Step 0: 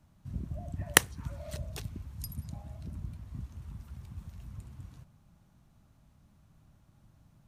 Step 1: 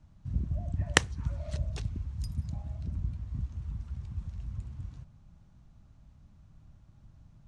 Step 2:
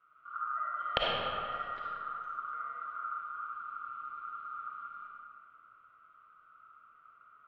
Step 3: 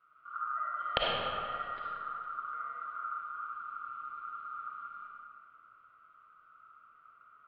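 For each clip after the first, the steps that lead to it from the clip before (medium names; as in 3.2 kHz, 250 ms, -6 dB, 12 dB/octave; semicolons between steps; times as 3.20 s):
low-pass 7.6 kHz 24 dB/octave; bass shelf 110 Hz +12 dB; trim -1 dB
four-pole ladder low-pass 2.3 kHz, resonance 40%; ring modulator 1.3 kHz; reverberation RT60 2.2 s, pre-delay 15 ms, DRR -5 dB
resampled via 11.025 kHz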